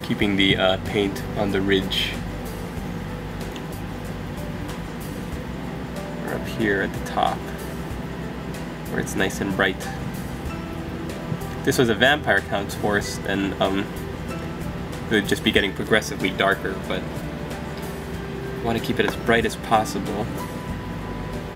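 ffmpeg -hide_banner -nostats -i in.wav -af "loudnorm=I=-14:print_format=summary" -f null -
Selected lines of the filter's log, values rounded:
Input Integrated:    -24.4 LUFS
Input True Peak:      -1.4 dBTP
Input LRA:             5.6 LU
Input Threshold:     -34.4 LUFS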